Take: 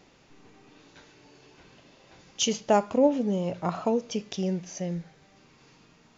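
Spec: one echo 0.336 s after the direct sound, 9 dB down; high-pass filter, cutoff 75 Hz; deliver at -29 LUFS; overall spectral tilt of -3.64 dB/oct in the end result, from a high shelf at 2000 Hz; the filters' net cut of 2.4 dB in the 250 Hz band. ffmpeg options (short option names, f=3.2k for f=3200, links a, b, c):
-af "highpass=75,equalizer=f=250:t=o:g=-3,highshelf=f=2k:g=4.5,aecho=1:1:336:0.355,volume=-2dB"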